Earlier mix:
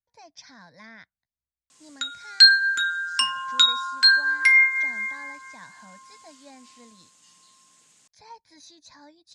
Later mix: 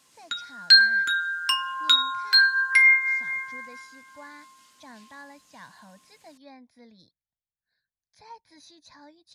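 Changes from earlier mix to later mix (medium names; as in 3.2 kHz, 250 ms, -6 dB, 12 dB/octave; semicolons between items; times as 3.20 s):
background: entry -1.70 s; master: remove resonant low-pass 7.7 kHz, resonance Q 2.3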